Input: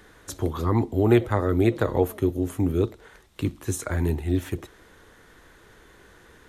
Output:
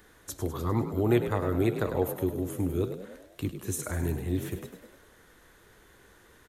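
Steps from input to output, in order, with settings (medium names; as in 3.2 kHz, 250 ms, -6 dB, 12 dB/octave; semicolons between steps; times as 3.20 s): treble shelf 10 kHz +11 dB; on a send: frequency-shifting echo 101 ms, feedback 54%, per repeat +47 Hz, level -10 dB; on the sum: trim -6 dB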